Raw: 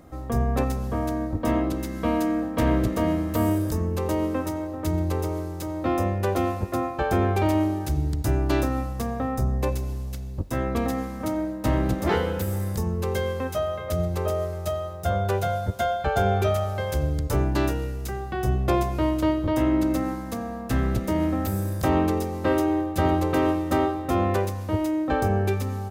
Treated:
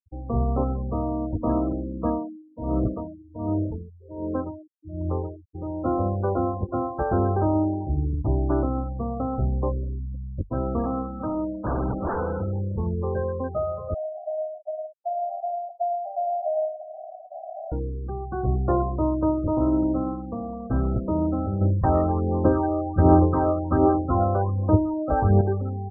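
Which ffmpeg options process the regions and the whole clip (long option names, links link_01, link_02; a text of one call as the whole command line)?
ffmpeg -i in.wav -filter_complex "[0:a]asettb=1/sr,asplit=3[link_01][link_02][link_03];[link_01]atrim=end=2.064[link_04];[link_02]atrim=start=2.06:end=5.55,asetpts=PTS-STARTPTS,afade=type=in:duration=0.004:curve=qsin,afade=type=out:start_time=3.486:duration=0.004:curve=qsin,highshelf=frequency=3000:gain=3.5,aeval=exprs='val(0)*pow(10,-19*(0.5-0.5*cos(2*PI*1.3*n/s))/20)':channel_layout=same[link_05];[link_03]atrim=start=5.546[link_06];[link_04][link_05]acrossfade=duration=0.004:curve1=hsin:curve2=qsin[link_07];[link_07][link_06]acrossfade=duration=0.004:curve1=qsin:curve2=hsin,asettb=1/sr,asplit=3[link_08][link_09][link_10];[link_08]atrim=end=10.824[link_11];[link_09]atrim=start=10.82:end=12.51,asetpts=PTS-STARTPTS,afade=type=in:duration=0.004:curve=qsin,afade=type=out:start_time=1.686:duration=0.004:curve=qsin,equalizer=frequency=1300:width_type=o:width=0.77:gain=6,aeval=exprs='0.1*(abs(mod(val(0)/0.1+3,4)-2)-1)':channel_layout=same[link_12];[link_10]atrim=start=12.506[link_13];[link_11][link_12]acrossfade=duration=0.004:curve1=hsin:curve2=qsin[link_14];[link_14][link_13]acrossfade=duration=0.004:curve1=qsin:curve2=hsin,asettb=1/sr,asplit=3[link_15][link_16][link_17];[link_15]atrim=end=13.944[link_18];[link_16]atrim=start=13.94:end=17.72,asetpts=PTS-STARTPTS,afade=type=in:duration=0.004:curve=qsin,afade=type=out:start_time=3.776:duration=0.004:curve=qsin,acrusher=bits=3:mix=0:aa=0.5,asuperpass=centerf=680:order=8:qfactor=4.3,aecho=1:1:109:0.562,atrim=end_sample=166698[link_19];[link_17]atrim=start=17.716[link_20];[link_18][link_19]acrossfade=duration=0.004:curve1=hsin:curve2=qsin[link_21];[link_21][link_20]acrossfade=duration=0.004:curve1=qsin:curve2=hsin,asettb=1/sr,asplit=3[link_22][link_23][link_24];[link_22]atrim=end=21.614[link_25];[link_23]atrim=start=21.61:end=25.41,asetpts=PTS-STARTPTS,afade=type=in:duration=0.004:curve=qsin,afade=type=out:start_time=3.796:duration=0.004:curve=qsin,aphaser=in_gain=1:out_gain=1:delay=1.6:decay=0.57:speed=1.3:type=sinusoidal,aemphasis=mode=reproduction:type=cd[link_26];[link_24]atrim=start=25.406[link_27];[link_25][link_26]acrossfade=duration=0.004:curve1=hsin:curve2=qsin[link_28];[link_28][link_27]acrossfade=duration=0.004:curve1=qsin:curve2=hsin,lowpass=frequency=1400:width=0.5412,lowpass=frequency=1400:width=1.3066,afftfilt=real='re*gte(hypot(re,im),0.0398)':imag='im*gte(hypot(re,im),0.0398)':win_size=1024:overlap=0.75" out.wav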